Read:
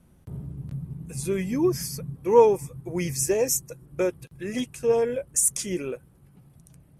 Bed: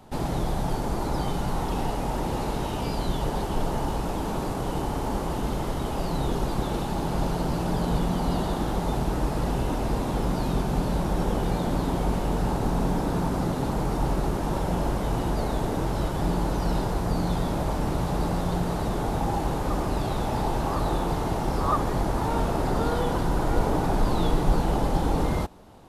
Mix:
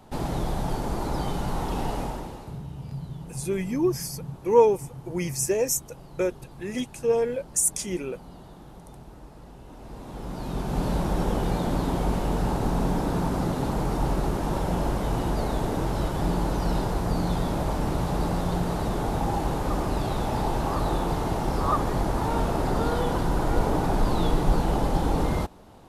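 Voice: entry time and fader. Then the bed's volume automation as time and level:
2.20 s, -1.0 dB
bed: 2.01 s -1 dB
2.63 s -20 dB
9.61 s -20 dB
10.86 s 0 dB

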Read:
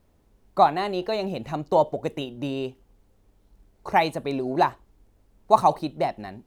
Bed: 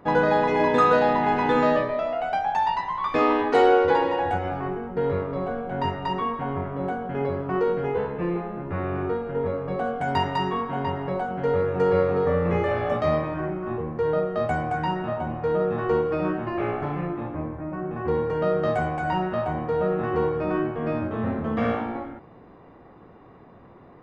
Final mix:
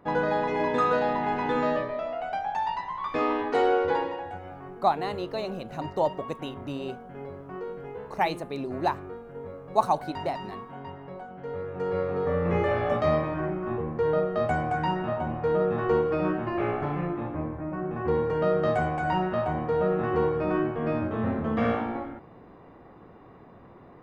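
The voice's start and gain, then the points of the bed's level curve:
4.25 s, -5.5 dB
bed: 3.99 s -5.5 dB
4.29 s -13 dB
11.43 s -13 dB
12.63 s -1 dB

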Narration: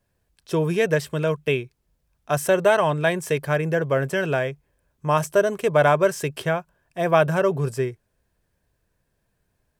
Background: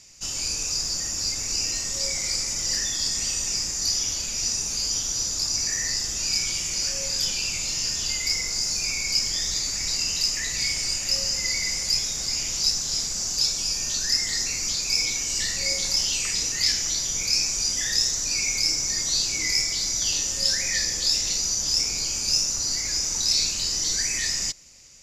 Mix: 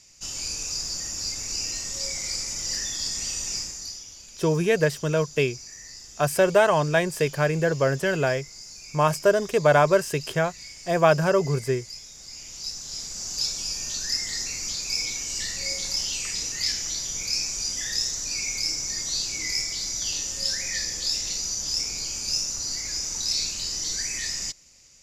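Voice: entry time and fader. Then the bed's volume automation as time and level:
3.90 s, -0.5 dB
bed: 3.58 s -3.5 dB
4.05 s -16.5 dB
12.09 s -16.5 dB
13.41 s -4 dB

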